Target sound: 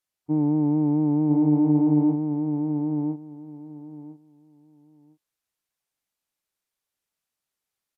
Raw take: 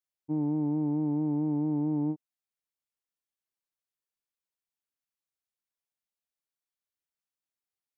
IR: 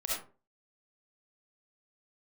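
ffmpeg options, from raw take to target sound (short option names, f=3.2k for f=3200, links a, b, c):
-filter_complex "[0:a]asplit=2[a][b];[b]aecho=0:1:1005|2010|3015:0.596|0.107|0.0193[c];[a][c]amix=inputs=2:normalize=0,volume=7dB" -ar 32000 -c:a aac -b:a 96k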